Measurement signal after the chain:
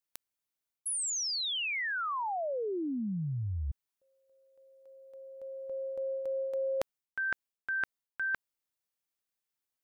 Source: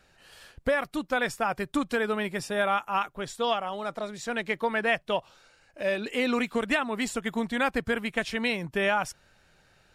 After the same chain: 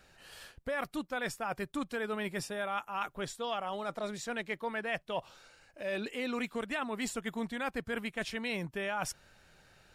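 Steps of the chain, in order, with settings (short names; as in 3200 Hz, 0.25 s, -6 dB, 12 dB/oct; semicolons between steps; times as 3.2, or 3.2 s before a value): high shelf 11000 Hz +4 dB; reverse; compressor 5:1, threshold -33 dBFS; reverse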